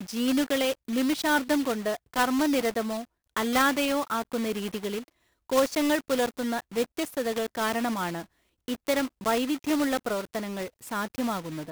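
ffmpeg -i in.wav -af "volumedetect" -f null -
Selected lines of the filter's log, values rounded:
mean_volume: -28.0 dB
max_volume: -12.8 dB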